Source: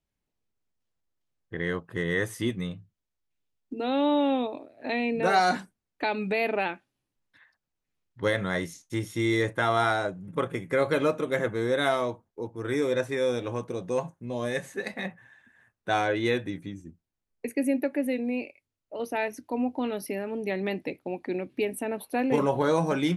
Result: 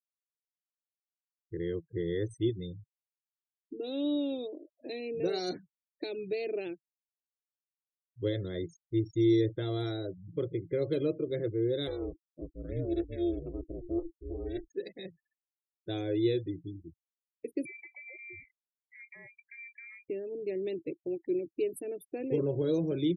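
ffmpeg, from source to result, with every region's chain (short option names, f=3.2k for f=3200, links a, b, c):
-filter_complex "[0:a]asettb=1/sr,asplit=3[a][b][c];[a]atrim=end=11.874[d];[b]atrim=start=11.87:end=14.7,asetpts=PTS-STARTPTS,afade=t=in:d=0.004:c=qsin,afade=t=out:st=2.826:d=0.004:c=qsin,aeval=exprs='val(0)*sin(2*PI*170*n/s)':c=same,equalizer=f=9.9k:t=o:w=2:g=-3[e];[c]atrim=start=14.696[f];[d][e]acrossfade=d=0.004:c1=hsin:c2=qsin[g];[g][f]acrossfade=d=0.004:c1=qsin:c2=hsin,asettb=1/sr,asplit=3[h][i][j];[h]atrim=end=17.654[k];[i]atrim=start=17.65:end=20.1,asetpts=PTS-STARTPTS,afade=t=in:d=0.004:c=qsin,afade=t=out:st=2.446:d=0.004:c=qsin,acompressor=threshold=-28dB:ratio=4:attack=3.2:release=140:knee=1:detection=peak,lowpass=f=2.2k:t=q:w=0.5098,lowpass=f=2.2k:t=q:w=0.6013,lowpass=f=2.2k:t=q:w=0.9,lowpass=f=2.2k:t=q:w=2.563,afreqshift=-2600[l];[j]atrim=start=20.096[m];[k][l]acrossfade=d=0.004:c1=hsin:c2=qsin[n];[n][m]acrossfade=d=0.004:c1=qsin:c2=hsin,afftfilt=real='re*gte(hypot(re,im),0.02)':imag='im*gte(hypot(re,im),0.02)':win_size=1024:overlap=0.75,firequalizer=gain_entry='entry(140,0);entry(220,-19);entry(330,3);entry(870,-28);entry(3600,-5)':delay=0.05:min_phase=1"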